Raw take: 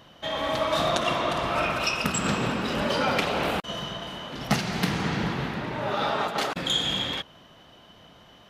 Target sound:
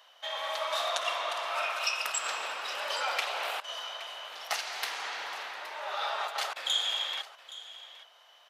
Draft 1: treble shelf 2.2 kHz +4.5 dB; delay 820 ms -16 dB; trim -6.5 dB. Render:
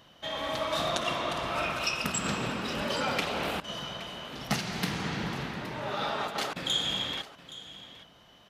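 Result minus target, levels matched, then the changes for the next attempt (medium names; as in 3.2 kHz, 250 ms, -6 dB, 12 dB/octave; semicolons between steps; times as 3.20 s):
500 Hz band +3.5 dB
add first: high-pass 630 Hz 24 dB/octave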